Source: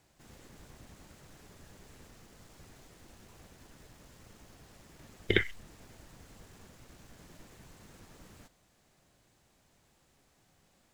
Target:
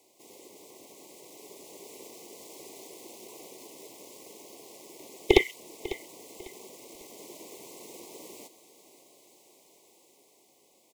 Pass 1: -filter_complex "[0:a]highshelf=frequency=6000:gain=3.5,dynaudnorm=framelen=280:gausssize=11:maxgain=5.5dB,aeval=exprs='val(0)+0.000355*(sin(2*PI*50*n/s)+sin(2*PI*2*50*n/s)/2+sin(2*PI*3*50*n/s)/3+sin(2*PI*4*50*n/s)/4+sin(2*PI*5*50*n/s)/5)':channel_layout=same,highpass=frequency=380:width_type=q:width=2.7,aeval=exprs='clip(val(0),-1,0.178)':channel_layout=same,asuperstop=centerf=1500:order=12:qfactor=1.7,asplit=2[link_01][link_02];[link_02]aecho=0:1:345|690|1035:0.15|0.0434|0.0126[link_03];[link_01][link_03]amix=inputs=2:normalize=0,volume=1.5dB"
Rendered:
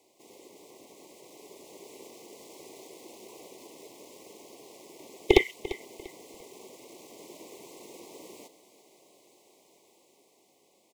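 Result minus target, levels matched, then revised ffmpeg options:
8,000 Hz band −9.0 dB; echo 203 ms early
-filter_complex "[0:a]highshelf=frequency=6000:gain=10,dynaudnorm=framelen=280:gausssize=11:maxgain=5.5dB,aeval=exprs='val(0)+0.000355*(sin(2*PI*50*n/s)+sin(2*PI*2*50*n/s)/2+sin(2*PI*3*50*n/s)/3+sin(2*PI*4*50*n/s)/4+sin(2*PI*5*50*n/s)/5)':channel_layout=same,highpass=frequency=380:width_type=q:width=2.7,aeval=exprs='clip(val(0),-1,0.178)':channel_layout=same,asuperstop=centerf=1500:order=12:qfactor=1.7,asplit=2[link_01][link_02];[link_02]aecho=0:1:548|1096|1644:0.15|0.0434|0.0126[link_03];[link_01][link_03]amix=inputs=2:normalize=0,volume=1.5dB"

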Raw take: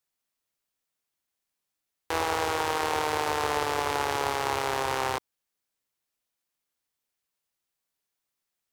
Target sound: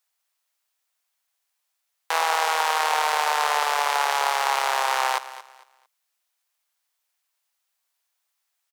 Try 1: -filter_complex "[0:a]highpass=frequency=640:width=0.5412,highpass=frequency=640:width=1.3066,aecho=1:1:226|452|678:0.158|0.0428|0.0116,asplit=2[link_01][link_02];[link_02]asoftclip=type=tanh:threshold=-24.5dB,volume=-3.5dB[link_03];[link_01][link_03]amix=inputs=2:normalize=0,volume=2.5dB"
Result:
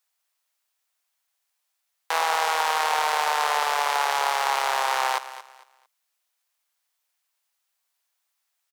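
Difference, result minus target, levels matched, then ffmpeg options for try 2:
soft clipping: distortion +12 dB
-filter_complex "[0:a]highpass=frequency=640:width=0.5412,highpass=frequency=640:width=1.3066,aecho=1:1:226|452|678:0.158|0.0428|0.0116,asplit=2[link_01][link_02];[link_02]asoftclip=type=tanh:threshold=-15dB,volume=-3.5dB[link_03];[link_01][link_03]amix=inputs=2:normalize=0,volume=2.5dB"

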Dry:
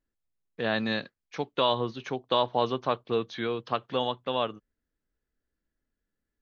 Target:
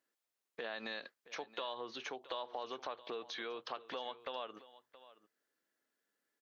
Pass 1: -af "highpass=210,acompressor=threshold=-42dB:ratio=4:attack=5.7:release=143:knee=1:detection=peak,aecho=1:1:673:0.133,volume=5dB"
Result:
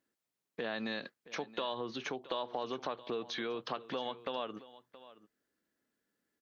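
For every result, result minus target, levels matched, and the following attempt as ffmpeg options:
250 Hz band +6.0 dB; downward compressor: peak gain reduction −4 dB
-af "highpass=470,acompressor=threshold=-42dB:ratio=4:attack=5.7:release=143:knee=1:detection=peak,aecho=1:1:673:0.133,volume=5dB"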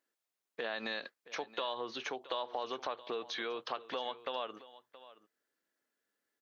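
downward compressor: peak gain reduction −4.5 dB
-af "highpass=470,acompressor=threshold=-48dB:ratio=4:attack=5.7:release=143:knee=1:detection=peak,aecho=1:1:673:0.133,volume=5dB"

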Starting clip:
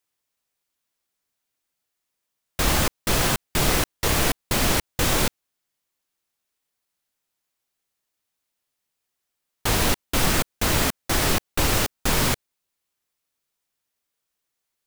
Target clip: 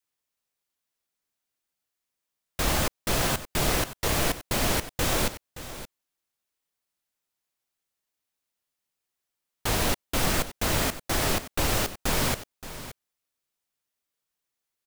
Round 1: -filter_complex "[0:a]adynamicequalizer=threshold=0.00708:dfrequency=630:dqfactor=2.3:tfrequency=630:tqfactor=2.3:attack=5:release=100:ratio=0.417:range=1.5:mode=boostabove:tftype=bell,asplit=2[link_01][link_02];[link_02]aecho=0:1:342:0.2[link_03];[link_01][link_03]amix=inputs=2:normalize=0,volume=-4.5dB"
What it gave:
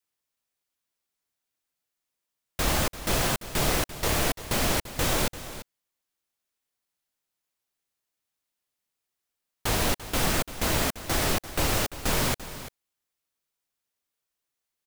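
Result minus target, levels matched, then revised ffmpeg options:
echo 231 ms early
-filter_complex "[0:a]adynamicequalizer=threshold=0.00708:dfrequency=630:dqfactor=2.3:tfrequency=630:tqfactor=2.3:attack=5:release=100:ratio=0.417:range=1.5:mode=boostabove:tftype=bell,asplit=2[link_01][link_02];[link_02]aecho=0:1:573:0.2[link_03];[link_01][link_03]amix=inputs=2:normalize=0,volume=-4.5dB"

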